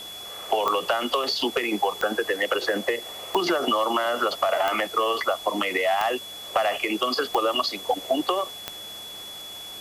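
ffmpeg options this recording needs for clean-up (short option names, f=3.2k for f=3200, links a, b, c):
-af "adeclick=t=4,bandreject=f=105.1:t=h:w=4,bandreject=f=210.2:t=h:w=4,bandreject=f=315.3:t=h:w=4,bandreject=f=420.4:t=h:w=4,bandreject=f=3.4k:w=30,afwtdn=0.0063"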